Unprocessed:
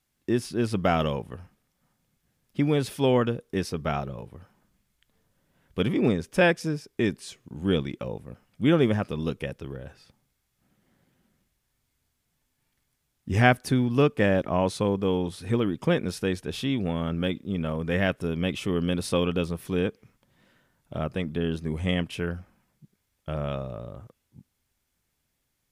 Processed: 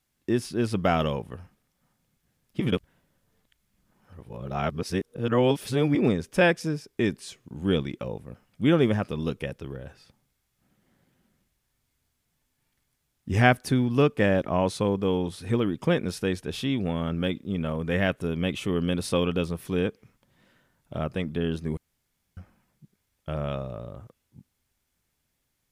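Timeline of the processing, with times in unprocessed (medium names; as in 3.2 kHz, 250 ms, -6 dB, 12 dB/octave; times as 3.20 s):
2.60–5.95 s: reverse
17.56–18.98 s: band-stop 5.2 kHz
21.77–22.37 s: room tone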